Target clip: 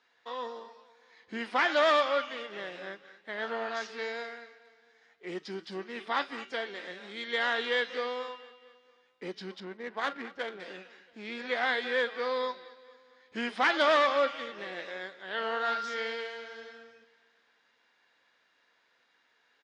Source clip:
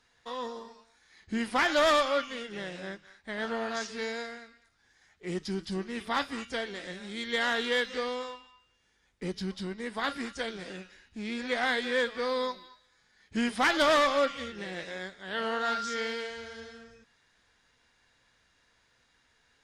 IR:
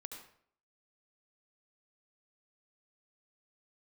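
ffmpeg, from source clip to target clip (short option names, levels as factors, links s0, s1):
-filter_complex "[0:a]asettb=1/sr,asplit=3[s0][s1][s2];[s0]atrim=end=9.604[s3];[s1]atrim=start=9.6:end=10.6,asetpts=PTS-STARTPTS,afade=t=in:d=0.004:c=qsin,afade=t=out:st=0.996:d=0.004:c=qsin,adynamicsmooth=sensitivity=7.5:basefreq=1300[s4];[s2]atrim=start=10.596[s5];[s3][s4]acrossfade=d=0.004:c1=hsin:c2=qsin[s6];[s6][s5]acrossfade=d=0.004:c1=qsin:c2=hsin,highpass=350,lowpass=4000,asplit=2[s7][s8];[s8]aecho=0:1:227|454|681|908:0.0944|0.0538|0.0307|0.0175[s9];[s7][s9]amix=inputs=2:normalize=0"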